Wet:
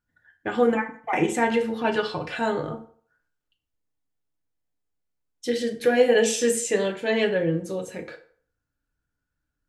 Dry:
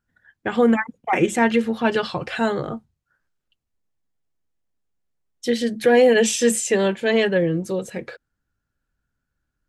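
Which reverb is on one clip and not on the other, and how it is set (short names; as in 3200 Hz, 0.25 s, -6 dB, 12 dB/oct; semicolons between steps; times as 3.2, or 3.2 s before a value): FDN reverb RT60 0.51 s, low-frequency decay 0.75×, high-frequency decay 0.7×, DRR 3.5 dB; gain -5 dB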